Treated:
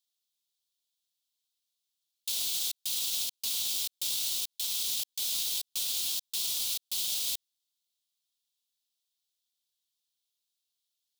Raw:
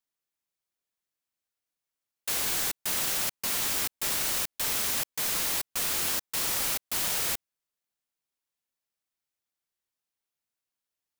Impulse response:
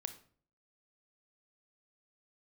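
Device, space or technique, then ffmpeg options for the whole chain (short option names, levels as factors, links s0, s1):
over-bright horn tweeter: -af "highshelf=f=2500:t=q:w=3:g=12.5,alimiter=limit=0.224:level=0:latency=1:release=71,volume=0.355"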